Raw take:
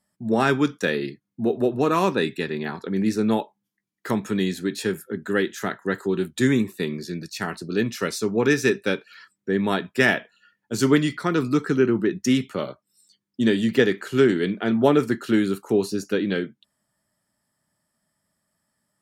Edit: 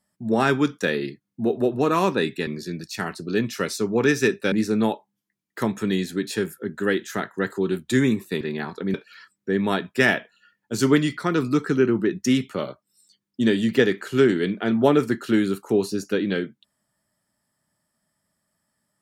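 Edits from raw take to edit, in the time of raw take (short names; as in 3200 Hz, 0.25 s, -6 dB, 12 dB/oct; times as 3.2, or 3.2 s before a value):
2.47–3 swap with 6.89–8.94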